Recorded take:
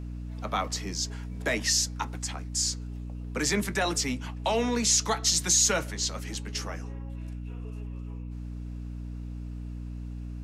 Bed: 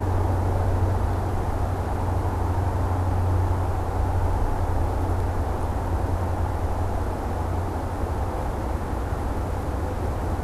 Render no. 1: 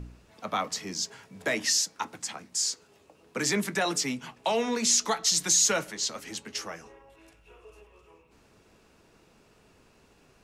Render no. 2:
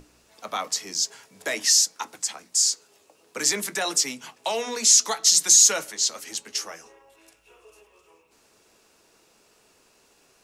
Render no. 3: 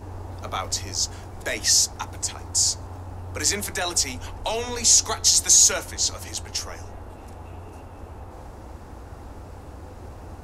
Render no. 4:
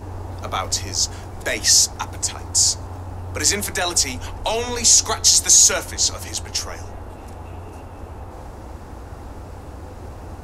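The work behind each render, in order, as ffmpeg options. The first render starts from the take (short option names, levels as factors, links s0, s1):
-af "bandreject=f=60:t=h:w=4,bandreject=f=120:t=h:w=4,bandreject=f=180:t=h:w=4,bandreject=f=240:t=h:w=4,bandreject=f=300:t=h:w=4"
-af "bass=f=250:g=-11,treble=f=4000:g=9,bandreject=f=60:t=h:w=6,bandreject=f=120:t=h:w=6,bandreject=f=180:t=h:w=6,bandreject=f=240:t=h:w=6"
-filter_complex "[1:a]volume=0.211[s0];[0:a][s0]amix=inputs=2:normalize=0"
-af "volume=1.68,alimiter=limit=0.708:level=0:latency=1"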